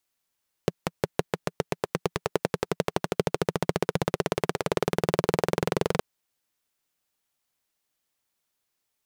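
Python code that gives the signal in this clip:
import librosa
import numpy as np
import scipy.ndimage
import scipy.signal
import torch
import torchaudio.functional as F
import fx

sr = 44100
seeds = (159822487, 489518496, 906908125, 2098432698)

y = fx.engine_single_rev(sr, seeds[0], length_s=5.32, rpm=600, resonances_hz=(170.0, 410.0), end_rpm=2700)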